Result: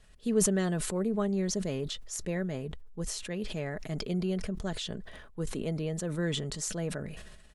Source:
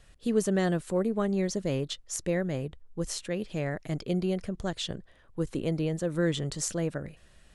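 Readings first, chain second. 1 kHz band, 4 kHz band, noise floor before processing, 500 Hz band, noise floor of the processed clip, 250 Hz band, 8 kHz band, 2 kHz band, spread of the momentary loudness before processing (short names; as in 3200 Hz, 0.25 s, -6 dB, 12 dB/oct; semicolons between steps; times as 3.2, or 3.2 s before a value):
-3.5 dB, -0.5 dB, -59 dBFS, -3.5 dB, -54 dBFS, -2.0 dB, +2.0 dB, -2.5 dB, 8 LU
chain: comb 4.7 ms, depth 36%; sustainer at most 40 dB/s; gain -4 dB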